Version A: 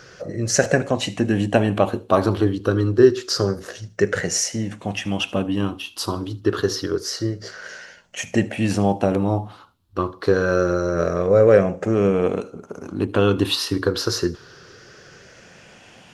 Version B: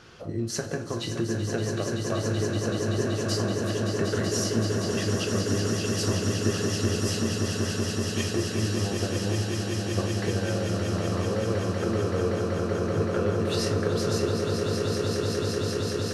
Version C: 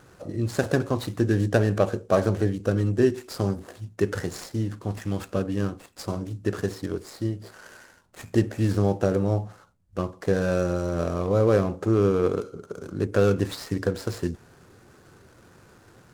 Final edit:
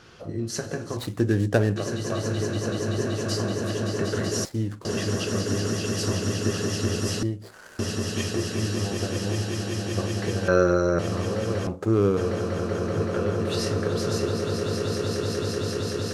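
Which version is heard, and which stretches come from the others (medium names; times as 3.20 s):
B
0.97–1.76 s: from C
4.45–4.85 s: from C
7.23–7.79 s: from C
10.48–10.99 s: from A
11.67–12.17 s: from C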